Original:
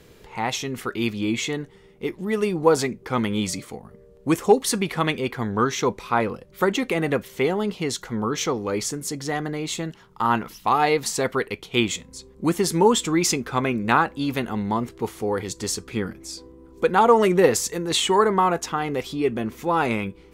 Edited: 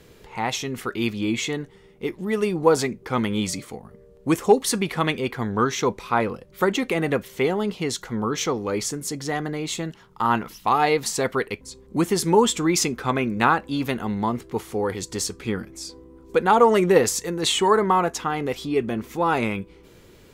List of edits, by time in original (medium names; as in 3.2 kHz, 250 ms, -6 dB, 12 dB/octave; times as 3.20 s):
11.61–12.09 s: delete